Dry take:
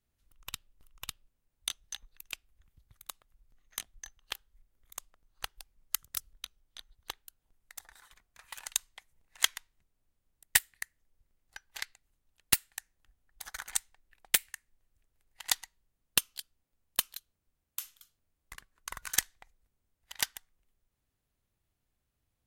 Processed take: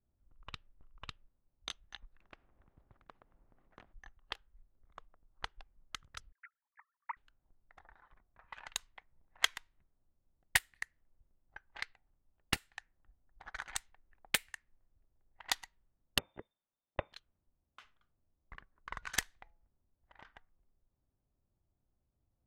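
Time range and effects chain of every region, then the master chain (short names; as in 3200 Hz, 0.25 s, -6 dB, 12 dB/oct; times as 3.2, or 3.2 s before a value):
2.21–3.93 hard clip -23 dBFS + spectral compressor 2:1
6.32–7.17 sine-wave speech + steep low-pass 2100 Hz 72 dB/oct + tilt shelf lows -4.5 dB, about 780 Hz
11.83–12.57 high shelf 8200 Hz -10.5 dB + de-hum 74.77 Hz, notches 12
16.18–17.13 inverted band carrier 3600 Hz + air absorption 260 m
19.37–20.25 de-hum 169.2 Hz, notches 5 + compressor 8:1, threshold -44 dBFS
whole clip: LPF 2400 Hz 6 dB/oct; notch 460 Hz, Q 12; low-pass opened by the level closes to 830 Hz, open at -38 dBFS; gain +1.5 dB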